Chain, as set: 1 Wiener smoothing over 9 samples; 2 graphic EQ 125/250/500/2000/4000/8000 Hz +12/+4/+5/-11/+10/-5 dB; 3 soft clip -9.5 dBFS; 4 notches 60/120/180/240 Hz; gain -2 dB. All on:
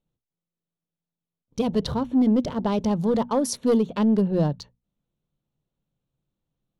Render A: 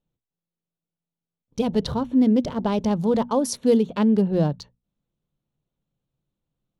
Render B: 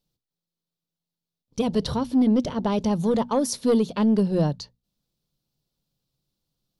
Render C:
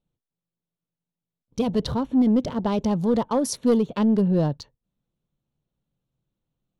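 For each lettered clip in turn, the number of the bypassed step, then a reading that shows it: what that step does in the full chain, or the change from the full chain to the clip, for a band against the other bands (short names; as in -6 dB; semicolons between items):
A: 3, distortion -19 dB; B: 1, 4 kHz band +1.5 dB; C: 4, momentary loudness spread change +1 LU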